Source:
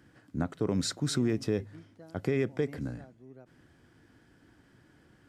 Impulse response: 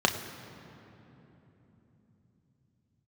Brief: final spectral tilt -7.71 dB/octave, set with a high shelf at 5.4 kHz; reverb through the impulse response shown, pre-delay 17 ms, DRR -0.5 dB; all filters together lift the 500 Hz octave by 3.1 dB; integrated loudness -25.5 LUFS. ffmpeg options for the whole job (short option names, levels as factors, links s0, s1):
-filter_complex "[0:a]equalizer=f=500:t=o:g=4,highshelf=f=5400:g=-6.5,asplit=2[s0][s1];[1:a]atrim=start_sample=2205,adelay=17[s2];[s1][s2]afir=irnorm=-1:irlink=0,volume=0.224[s3];[s0][s3]amix=inputs=2:normalize=0,volume=1.19"